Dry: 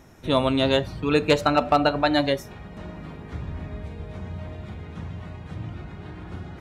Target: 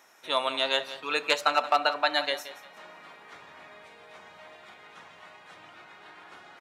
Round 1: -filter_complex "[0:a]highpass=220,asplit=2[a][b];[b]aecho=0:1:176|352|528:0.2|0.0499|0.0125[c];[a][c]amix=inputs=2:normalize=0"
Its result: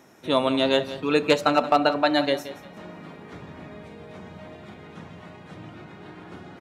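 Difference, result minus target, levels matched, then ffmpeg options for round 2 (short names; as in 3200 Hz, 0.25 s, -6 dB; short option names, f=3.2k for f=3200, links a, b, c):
250 Hz band +14.0 dB
-filter_complex "[0:a]highpass=880,asplit=2[a][b];[b]aecho=0:1:176|352|528:0.2|0.0499|0.0125[c];[a][c]amix=inputs=2:normalize=0"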